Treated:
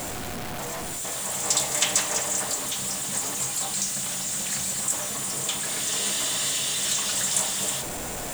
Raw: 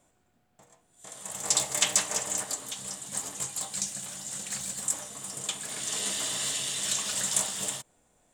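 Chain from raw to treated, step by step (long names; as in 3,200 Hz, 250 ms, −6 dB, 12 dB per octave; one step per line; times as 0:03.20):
converter with a step at zero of −26.5 dBFS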